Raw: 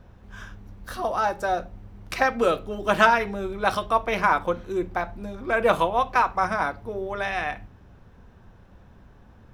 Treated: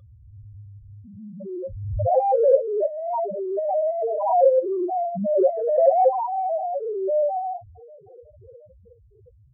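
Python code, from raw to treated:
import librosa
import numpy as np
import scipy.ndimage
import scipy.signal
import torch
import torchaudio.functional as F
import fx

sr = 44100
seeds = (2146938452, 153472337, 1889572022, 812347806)

p1 = fx.spec_dilate(x, sr, span_ms=120)
p2 = fx.high_shelf(p1, sr, hz=3500.0, db=9.5)
p3 = fx.sample_hold(p2, sr, seeds[0], rate_hz=3000.0, jitter_pct=0)
p4 = p2 + (p3 * 10.0 ** (-8.5 / 20.0))
p5 = scipy.signal.sosfilt(scipy.signal.butter(2, 53.0, 'highpass', fs=sr, output='sos'), p4)
p6 = p5 + fx.echo_banded(p5, sr, ms=362, feedback_pct=83, hz=400.0, wet_db=-23, dry=0)
p7 = fx.filter_sweep_lowpass(p6, sr, from_hz=130.0, to_hz=680.0, start_s=0.94, end_s=2.05, q=2.1)
p8 = fx.spec_topn(p7, sr, count=1)
p9 = fx.low_shelf(p8, sr, hz=330.0, db=10.5, at=(5.2, 6.24), fade=0.02)
p10 = fx.over_compress(p9, sr, threshold_db=-22.0, ratio=-0.5)
p11 = fx.small_body(p10, sr, hz=(540.0, 1200.0, 3400.0), ring_ms=65, db=15)
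p12 = fx.pre_swell(p11, sr, db_per_s=45.0)
y = p12 * 10.0 ** (-4.5 / 20.0)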